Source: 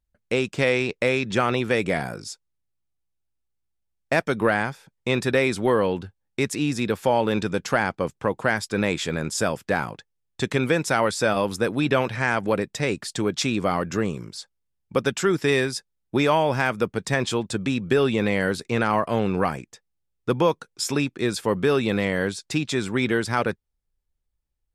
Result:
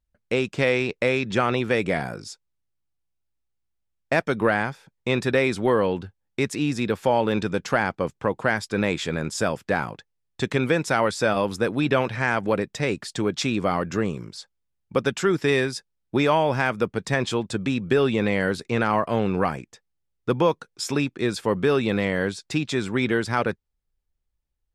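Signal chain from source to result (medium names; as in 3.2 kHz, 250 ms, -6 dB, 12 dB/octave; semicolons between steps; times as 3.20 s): treble shelf 7.8 kHz -8 dB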